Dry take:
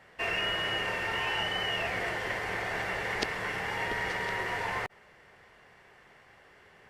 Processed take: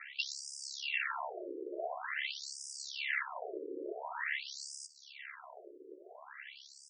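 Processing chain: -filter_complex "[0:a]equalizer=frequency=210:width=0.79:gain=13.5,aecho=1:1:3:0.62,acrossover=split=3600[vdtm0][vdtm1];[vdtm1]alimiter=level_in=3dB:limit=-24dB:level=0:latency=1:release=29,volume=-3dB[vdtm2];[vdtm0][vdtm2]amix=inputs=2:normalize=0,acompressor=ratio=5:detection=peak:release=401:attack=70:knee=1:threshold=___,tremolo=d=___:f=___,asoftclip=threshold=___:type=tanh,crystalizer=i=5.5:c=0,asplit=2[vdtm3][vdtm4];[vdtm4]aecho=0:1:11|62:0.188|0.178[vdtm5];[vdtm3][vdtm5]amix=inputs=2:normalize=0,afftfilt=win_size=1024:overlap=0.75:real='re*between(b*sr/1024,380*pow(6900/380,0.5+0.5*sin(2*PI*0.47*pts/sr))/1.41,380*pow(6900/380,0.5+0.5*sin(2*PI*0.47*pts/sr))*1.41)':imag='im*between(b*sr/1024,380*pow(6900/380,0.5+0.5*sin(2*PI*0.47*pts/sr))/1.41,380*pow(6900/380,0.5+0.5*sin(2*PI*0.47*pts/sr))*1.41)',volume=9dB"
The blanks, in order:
-41dB, 0.857, 69, -35.5dB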